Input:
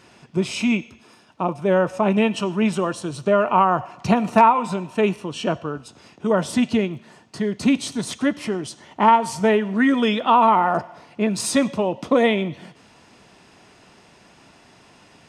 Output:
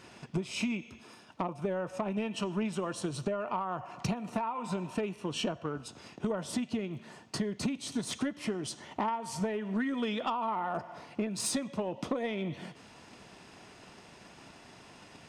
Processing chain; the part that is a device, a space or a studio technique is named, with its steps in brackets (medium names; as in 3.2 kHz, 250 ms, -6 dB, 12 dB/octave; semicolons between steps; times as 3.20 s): drum-bus smash (transient shaper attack +6 dB, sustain 0 dB; compression 20:1, threshold -25 dBFS, peak gain reduction 21 dB; saturation -19.5 dBFS, distortion -18 dB); trim -2.5 dB